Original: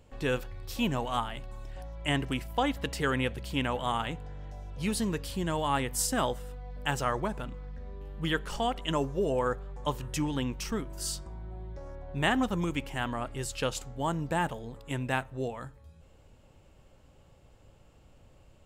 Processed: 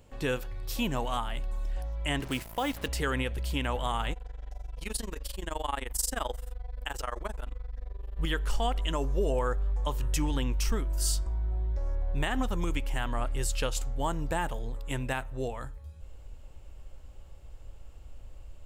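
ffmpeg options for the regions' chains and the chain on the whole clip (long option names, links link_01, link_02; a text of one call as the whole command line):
ffmpeg -i in.wav -filter_complex "[0:a]asettb=1/sr,asplit=3[link_01][link_02][link_03];[link_01]atrim=end=2.204[link_04];[link_02]atrim=start=2.2:end=2.88,asetpts=PTS-STARTPTS,afade=type=in:duration=0.004:curve=qsin,afade=type=out:start_time=0.676:duration=0.004:curve=qsin,highpass=frequency=78:width=0.5412,highpass=frequency=78:width=1.3066,acrusher=bits=6:mix=0:aa=0.5[link_05];[link_03]atrim=start=2.876[link_06];[link_04][link_05]acrossfade=duration=0.004:curve1=hsin:curve2=qsin[link_07];[link_07][link_06]acrossfade=duration=0.004:curve1=qsin:curve2=hsin,asettb=1/sr,asplit=3[link_08][link_09][link_10];[link_08]atrim=end=4.134[link_11];[link_09]atrim=start=4.13:end=8.19,asetpts=PTS-STARTPTS,afade=type=in:duration=0.004:curve=qsin,afade=type=out:start_time=4.056:duration=0.004:curve=qsin,equalizer=frequency=110:width=0.82:gain=-15,tremolo=f=23:d=0.947[link_12];[link_10]atrim=start=8.186[link_13];[link_11][link_12]acrossfade=duration=0.004:curve1=hsin:curve2=qsin[link_14];[link_14][link_13]acrossfade=duration=0.004:curve1=qsin:curve2=hsin,asubboost=boost=8:cutoff=54,alimiter=limit=-19.5dB:level=0:latency=1:release=160,highshelf=frequency=8300:gain=6,volume=1dB" out.wav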